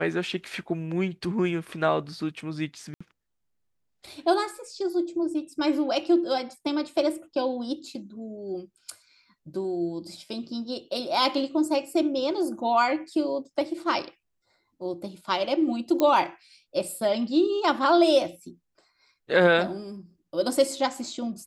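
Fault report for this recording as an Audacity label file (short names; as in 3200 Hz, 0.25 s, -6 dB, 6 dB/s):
2.940000	3.000000	gap 65 ms
16.000000	16.000000	pop -12 dBFS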